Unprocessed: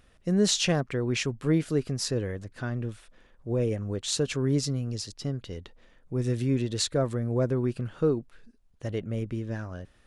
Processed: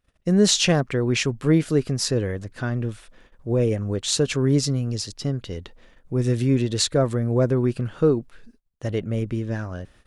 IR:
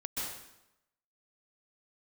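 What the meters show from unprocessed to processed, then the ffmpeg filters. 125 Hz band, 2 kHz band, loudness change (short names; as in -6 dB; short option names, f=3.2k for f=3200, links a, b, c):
+6.0 dB, +6.0 dB, +6.0 dB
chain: -af "agate=range=-23dB:threshold=-57dB:ratio=16:detection=peak,volume=6dB"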